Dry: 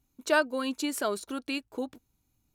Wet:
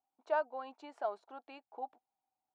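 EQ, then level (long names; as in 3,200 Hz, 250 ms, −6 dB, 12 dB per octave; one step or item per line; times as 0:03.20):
resonant band-pass 770 Hz, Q 8.7
high-frequency loss of the air 110 metres
spectral tilt +2 dB per octave
+7.0 dB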